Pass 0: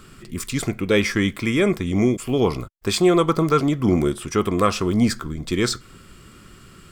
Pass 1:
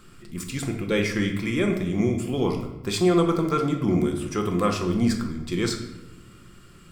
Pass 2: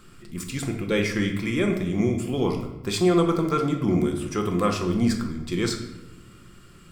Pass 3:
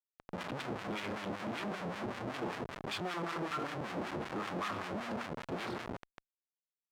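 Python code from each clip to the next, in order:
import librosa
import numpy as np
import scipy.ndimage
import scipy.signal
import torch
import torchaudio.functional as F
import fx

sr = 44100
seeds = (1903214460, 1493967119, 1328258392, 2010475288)

y1 = fx.room_shoebox(x, sr, seeds[0], volume_m3=440.0, walls='mixed', distance_m=0.85)
y1 = F.gain(torch.from_numpy(y1), -6.5).numpy()
y2 = y1
y3 = fx.fixed_phaser(y2, sr, hz=1900.0, stages=6)
y3 = fx.schmitt(y3, sr, flips_db=-38.0)
y3 = fx.filter_lfo_bandpass(y3, sr, shape='sine', hz=5.2, low_hz=470.0, high_hz=2100.0, q=0.81)
y3 = F.gain(torch.from_numpy(y3), -3.5).numpy()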